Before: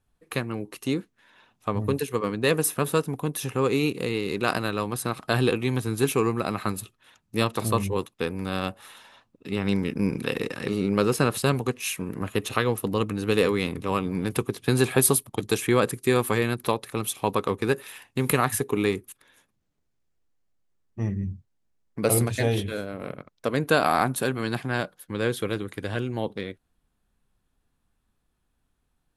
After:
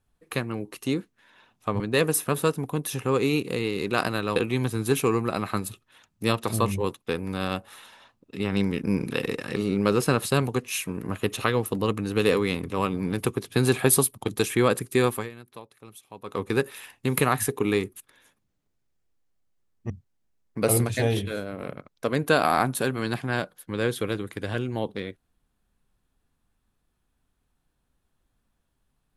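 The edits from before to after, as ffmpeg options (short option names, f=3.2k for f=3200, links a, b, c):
-filter_complex "[0:a]asplit=6[a][b][c][d][e][f];[a]atrim=end=1.802[g];[b]atrim=start=2.298:end=4.862[h];[c]atrim=start=5.478:end=16.42,asetpts=PTS-STARTPTS,afade=t=out:st=10.702:d=0.24:silence=0.11885[i];[d]atrim=start=16.42:end=17.35,asetpts=PTS-STARTPTS,volume=-18.5dB[j];[e]atrim=start=17.35:end=21.022,asetpts=PTS-STARTPTS,afade=t=in:d=0.24:silence=0.11885[k];[f]atrim=start=21.308[l];[g][h]acrossfade=d=0.004:c1=hsin:c2=hsin[m];[i][j][k]concat=n=3:v=0:a=1[n];[m][n]acrossfade=d=0.004:c1=hsin:c2=hsin[o];[o][l]acrossfade=d=0.004:c1=hsin:c2=hsin"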